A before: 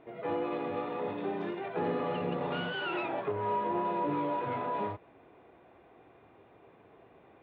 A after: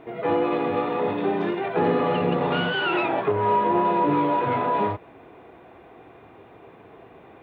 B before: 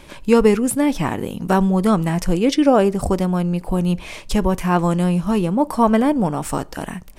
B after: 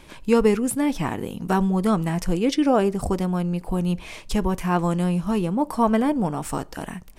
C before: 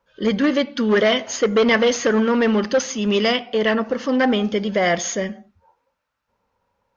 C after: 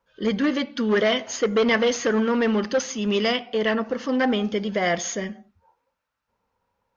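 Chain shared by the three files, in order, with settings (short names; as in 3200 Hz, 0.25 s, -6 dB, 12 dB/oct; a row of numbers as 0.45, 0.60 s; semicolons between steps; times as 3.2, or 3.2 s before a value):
notch 570 Hz, Q 18; match loudness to -23 LUFS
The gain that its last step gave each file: +11.0, -4.5, -3.5 dB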